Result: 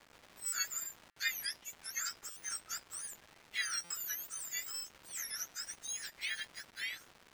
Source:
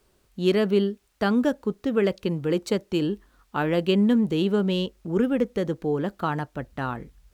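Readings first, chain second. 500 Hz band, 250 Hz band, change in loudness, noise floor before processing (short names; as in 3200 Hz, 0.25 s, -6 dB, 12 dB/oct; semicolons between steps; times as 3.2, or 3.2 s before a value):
under -40 dB, under -40 dB, -14.5 dB, -65 dBFS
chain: spectrum mirrored in octaves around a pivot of 1700 Hz; rippled Chebyshev high-pass 1300 Hz, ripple 3 dB; crackle 490/s -40 dBFS; LPF 2400 Hz 6 dB/oct; stuck buffer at 0.46/1.1/2.3/3.84, samples 256, times 10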